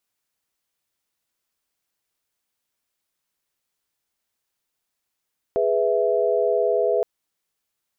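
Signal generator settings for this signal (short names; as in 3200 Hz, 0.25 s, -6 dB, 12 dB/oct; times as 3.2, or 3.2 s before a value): chord G#4/B4/E5 sine, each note -22 dBFS 1.47 s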